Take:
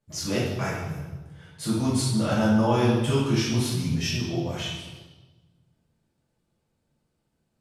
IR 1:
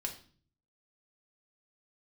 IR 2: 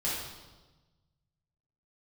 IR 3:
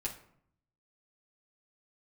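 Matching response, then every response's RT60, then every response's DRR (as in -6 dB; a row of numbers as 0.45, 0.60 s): 2; 0.45, 1.2, 0.65 s; 1.0, -8.0, -4.0 dB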